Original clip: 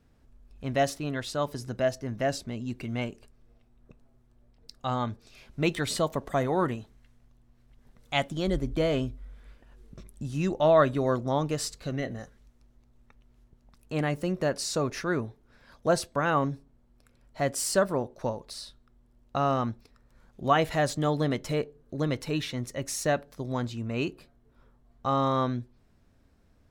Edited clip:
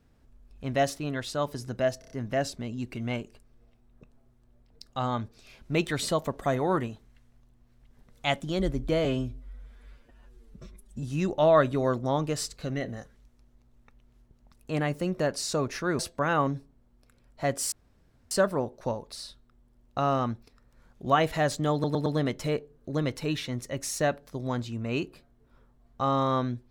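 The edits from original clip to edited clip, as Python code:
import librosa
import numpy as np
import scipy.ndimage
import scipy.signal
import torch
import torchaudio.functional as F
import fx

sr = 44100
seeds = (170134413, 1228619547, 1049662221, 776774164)

y = fx.edit(x, sr, fx.stutter(start_s=1.99, slice_s=0.03, count=5),
    fx.stretch_span(start_s=8.93, length_s=1.32, factor=1.5),
    fx.cut(start_s=15.21, length_s=0.75),
    fx.insert_room_tone(at_s=17.69, length_s=0.59),
    fx.stutter(start_s=21.11, slice_s=0.11, count=4), tone=tone)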